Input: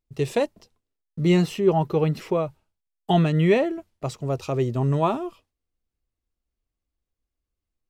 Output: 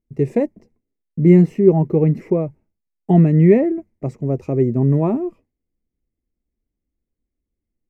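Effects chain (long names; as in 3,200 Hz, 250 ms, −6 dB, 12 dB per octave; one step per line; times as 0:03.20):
drawn EQ curve 110 Hz 0 dB, 220 Hz +8 dB, 370 Hz +4 dB, 1,400 Hz −15 dB, 2,100 Hz −3 dB, 3,300 Hz −27 dB, 6,200 Hz −16 dB, 11,000 Hz −18 dB
level +3.5 dB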